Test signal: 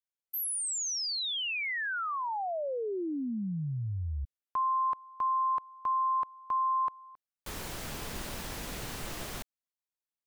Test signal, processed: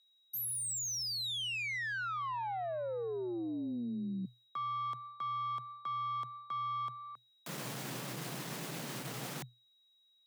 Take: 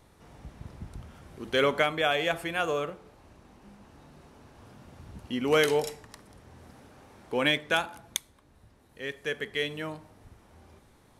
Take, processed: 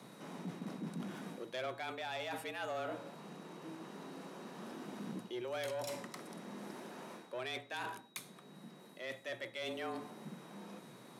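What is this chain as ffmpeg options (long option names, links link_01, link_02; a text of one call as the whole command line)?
ffmpeg -i in.wav -af "areverse,acompressor=threshold=-38dB:ratio=5:attack=0.51:release=350:knee=1:detection=peak,areverse,aeval=exprs='(tanh(79.4*val(0)+0.2)-tanh(0.2))/79.4':channel_layout=same,aeval=exprs='val(0)+0.000251*sin(2*PI*3700*n/s)':channel_layout=same,afreqshift=120,volume=4.5dB" out.wav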